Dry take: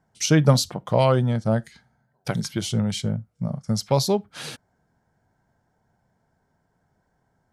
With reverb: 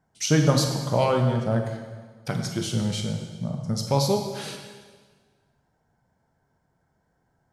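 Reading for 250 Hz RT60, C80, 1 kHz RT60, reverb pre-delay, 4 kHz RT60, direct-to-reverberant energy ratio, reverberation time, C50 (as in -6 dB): 1.5 s, 6.0 dB, 1.5 s, 7 ms, 1.4 s, 3.0 dB, 1.5 s, 5.0 dB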